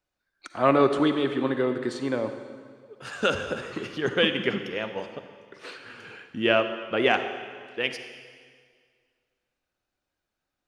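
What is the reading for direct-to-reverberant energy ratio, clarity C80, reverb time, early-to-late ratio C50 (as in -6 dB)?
8.0 dB, 9.5 dB, 1.9 s, 8.5 dB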